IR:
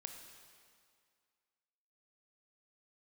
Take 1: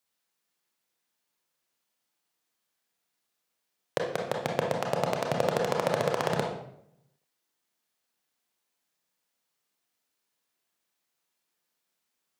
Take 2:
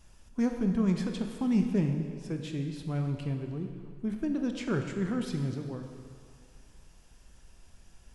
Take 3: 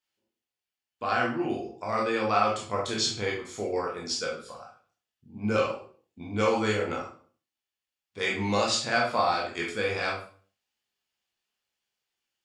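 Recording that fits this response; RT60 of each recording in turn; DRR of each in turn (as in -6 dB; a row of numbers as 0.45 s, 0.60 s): 2; 0.70 s, 2.1 s, 0.45 s; 0.0 dB, 4.5 dB, -3.0 dB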